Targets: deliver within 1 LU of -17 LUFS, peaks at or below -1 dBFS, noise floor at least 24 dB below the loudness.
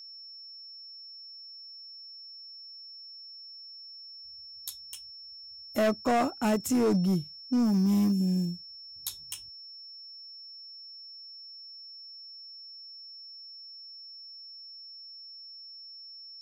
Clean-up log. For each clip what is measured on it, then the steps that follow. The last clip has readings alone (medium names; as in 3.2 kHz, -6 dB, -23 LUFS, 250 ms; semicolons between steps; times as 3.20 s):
clipped samples 1.1%; clipping level -21.0 dBFS; steady tone 5.4 kHz; tone level -44 dBFS; loudness -34.0 LUFS; peak level -21.0 dBFS; loudness target -17.0 LUFS
-> clip repair -21 dBFS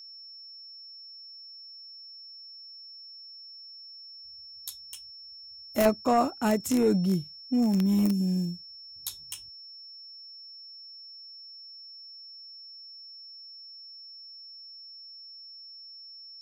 clipped samples 0.0%; steady tone 5.4 kHz; tone level -44 dBFS
-> band-stop 5.4 kHz, Q 30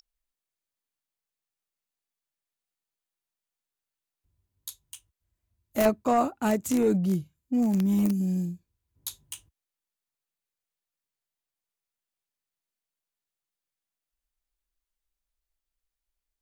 steady tone not found; loudness -26.0 LUFS; peak level -12.0 dBFS; loudness target -17.0 LUFS
-> trim +9 dB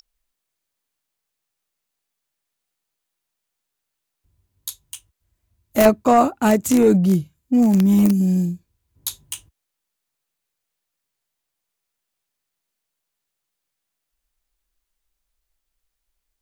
loudness -17.0 LUFS; peak level -3.0 dBFS; noise floor -81 dBFS